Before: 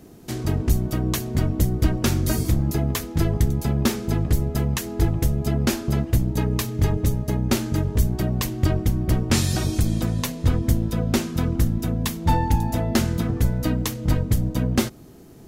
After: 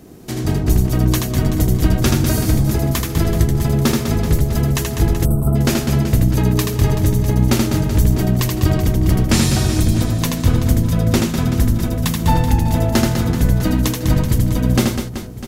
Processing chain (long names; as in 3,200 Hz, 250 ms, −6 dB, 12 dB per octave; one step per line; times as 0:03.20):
on a send: reverse bouncing-ball delay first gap 80 ms, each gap 1.5×, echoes 5
on the sum: gain on a spectral selection 0:05.25–0:05.56, 1,500–7,800 Hz −24 dB
level +4 dB